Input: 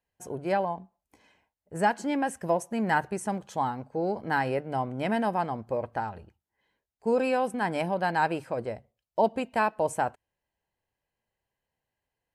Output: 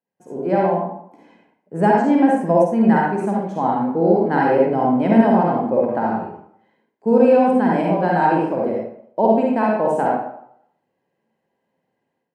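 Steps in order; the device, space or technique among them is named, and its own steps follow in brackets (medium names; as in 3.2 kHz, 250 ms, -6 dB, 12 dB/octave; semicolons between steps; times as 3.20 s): far laptop microphone (reverberation RT60 0.70 s, pre-delay 45 ms, DRR -3 dB; high-pass 190 Hz 24 dB/octave; level rider gain up to 12 dB); tilt EQ -4 dB/octave; trim -5 dB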